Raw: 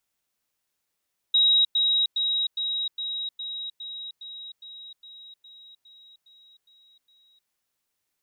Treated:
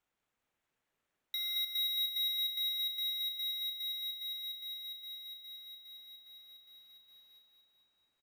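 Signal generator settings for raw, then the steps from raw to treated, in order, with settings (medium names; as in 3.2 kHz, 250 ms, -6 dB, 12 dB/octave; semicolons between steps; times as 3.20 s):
level ladder 3.82 kHz -16 dBFS, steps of -3 dB, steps 15, 0.31 s 0.10 s
median filter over 9 samples; compression 2.5:1, threshold -42 dBFS; feedback delay 222 ms, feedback 60%, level -6 dB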